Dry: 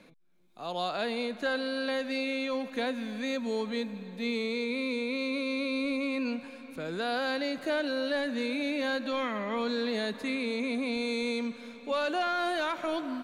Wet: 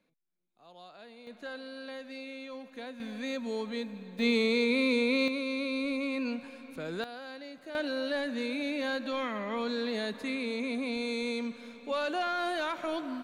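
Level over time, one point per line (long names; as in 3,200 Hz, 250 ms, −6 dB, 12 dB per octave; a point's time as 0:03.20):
−19 dB
from 0:01.27 −11 dB
from 0:03.00 −3 dB
from 0:04.19 +5 dB
from 0:05.28 −1.5 dB
from 0:07.04 −13 dB
from 0:07.75 −2 dB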